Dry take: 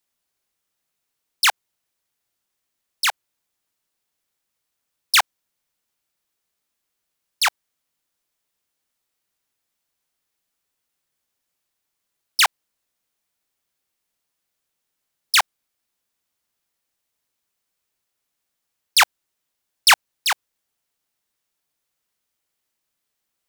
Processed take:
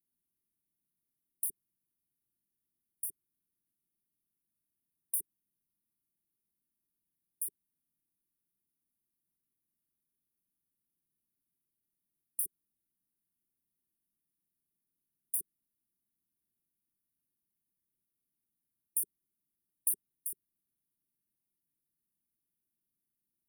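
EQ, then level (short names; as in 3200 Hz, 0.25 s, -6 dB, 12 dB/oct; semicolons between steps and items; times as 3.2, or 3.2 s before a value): brick-wall FIR band-stop 400–8900 Hz; bell 190 Hz +6.5 dB 1.2 oct; -6.5 dB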